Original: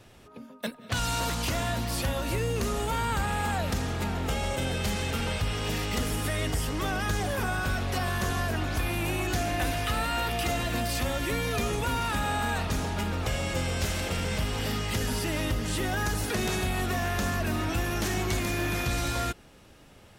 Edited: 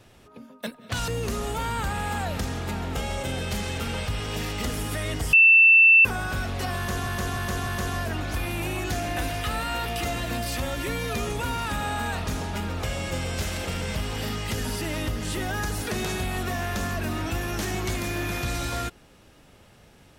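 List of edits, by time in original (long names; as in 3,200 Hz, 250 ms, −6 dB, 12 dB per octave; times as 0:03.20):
0:01.08–0:02.41: remove
0:06.66–0:07.38: beep over 2,670 Hz −11 dBFS
0:08.10–0:08.40: repeat, 4 plays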